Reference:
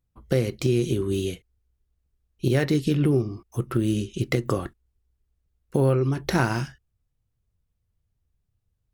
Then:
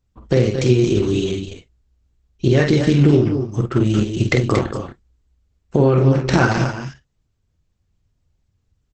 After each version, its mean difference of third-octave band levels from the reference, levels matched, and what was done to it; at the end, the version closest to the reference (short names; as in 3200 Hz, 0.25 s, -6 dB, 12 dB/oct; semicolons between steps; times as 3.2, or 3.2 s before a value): 6.5 dB: tapped delay 48/230/260 ms -5/-9/-12 dB; gain +6.5 dB; Opus 10 kbps 48000 Hz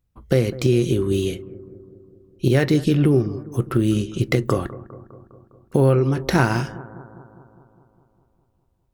2.0 dB: bell 10000 Hz -2 dB 2.3 oct; analogue delay 0.203 s, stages 2048, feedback 64%, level -17 dB; gain +4.5 dB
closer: second